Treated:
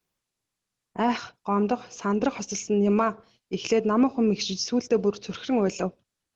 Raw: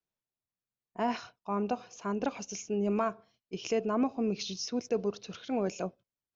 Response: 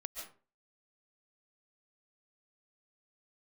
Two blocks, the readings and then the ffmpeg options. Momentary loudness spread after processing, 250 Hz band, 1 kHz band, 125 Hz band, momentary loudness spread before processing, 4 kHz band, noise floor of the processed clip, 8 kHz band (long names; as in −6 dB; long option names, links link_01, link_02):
10 LU, +8.5 dB, +7.0 dB, +8.5 dB, 10 LU, +8.0 dB, −85 dBFS, can't be measured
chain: -filter_complex "[0:a]equalizer=frequency=650:width=3.7:gain=-5,asplit=2[link_01][link_02];[link_02]acompressor=threshold=-46dB:ratio=5,volume=-1.5dB[link_03];[link_01][link_03]amix=inputs=2:normalize=0,volume=7.5dB" -ar 48000 -c:a libopus -b:a 16k